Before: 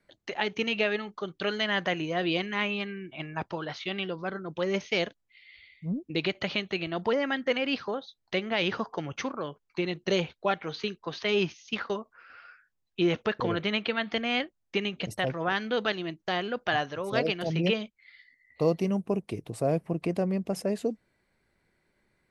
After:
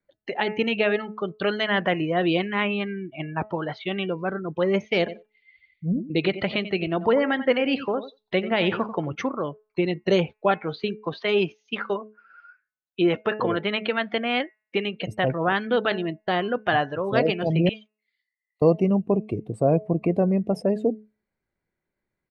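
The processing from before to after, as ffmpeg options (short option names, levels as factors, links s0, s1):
-filter_complex "[0:a]asplit=3[s0][s1][s2];[s0]afade=t=out:st=5.07:d=0.02[s3];[s1]aecho=1:1:91|182:0.237|0.0474,afade=t=in:st=5.07:d=0.02,afade=t=out:st=9.14:d=0.02[s4];[s2]afade=t=in:st=9.14:d=0.02[s5];[s3][s4][s5]amix=inputs=3:normalize=0,asettb=1/sr,asplit=3[s6][s7][s8];[s6]atrim=end=11.134[s9];[s7]atrim=start=11.13:end=15.08,asetpts=PTS-STARTPTS,afade=t=in:d=0.004:c=qsin,afade=t=out:st=3.946:d=0.004:c=qsin,highpass=f=270:p=1[s10];[s8]atrim=start=15.076[s11];[s9][s10]acrossfade=d=0.004:c1=hsin:c2=qsin[s12];[s12][s11]acrossfade=d=0.004:c1=qsin:c2=hsin,asettb=1/sr,asplit=3[s13][s14][s15];[s13]atrim=end=17.694[s16];[s14]atrim=start=17.69:end=18.62,asetpts=PTS-STARTPTS,afade=t=in:d=0.004:c=qsin,afade=t=out:st=0.926:d=0.004:c=qsin,aderivative[s17];[s15]atrim=start=18.616[s18];[s16][s17]acrossfade=d=0.004:c1=hsin:c2=qsin[s19];[s19][s18]acrossfade=d=0.004:c1=qsin:c2=hsin,bandreject=f=213.9:t=h:w=4,bandreject=f=427.8:t=h:w=4,bandreject=f=641.7:t=h:w=4,bandreject=f=855.6:t=h:w=4,bandreject=f=1069.5:t=h:w=4,bandreject=f=1283.4:t=h:w=4,bandreject=f=1497.3:t=h:w=4,bandreject=f=1711.2:t=h:w=4,bandreject=f=1925.1:t=h:w=4,bandreject=f=2139:t=h:w=4,bandreject=f=2352.9:t=h:w=4,bandreject=f=2566.8:t=h:w=4,bandreject=f=2780.7:t=h:w=4,afftdn=nr=17:nf=-41,highshelf=f=2800:g=-9.5,volume=2.24"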